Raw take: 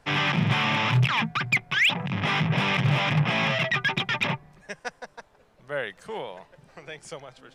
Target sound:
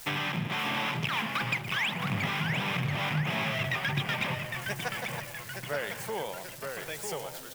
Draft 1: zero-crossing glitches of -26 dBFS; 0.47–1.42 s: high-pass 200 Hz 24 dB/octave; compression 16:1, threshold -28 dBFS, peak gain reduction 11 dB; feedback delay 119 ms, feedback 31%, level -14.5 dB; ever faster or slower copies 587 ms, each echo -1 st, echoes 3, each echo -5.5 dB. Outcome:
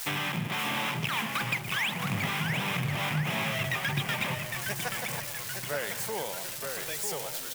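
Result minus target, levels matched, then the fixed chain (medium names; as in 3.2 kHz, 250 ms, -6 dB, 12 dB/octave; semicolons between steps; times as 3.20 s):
zero-crossing glitches: distortion +9 dB
zero-crossing glitches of -35 dBFS; 0.47–1.42 s: high-pass 200 Hz 24 dB/octave; compression 16:1, threshold -28 dBFS, peak gain reduction 11 dB; feedback delay 119 ms, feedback 31%, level -14.5 dB; ever faster or slower copies 587 ms, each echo -1 st, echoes 3, each echo -5.5 dB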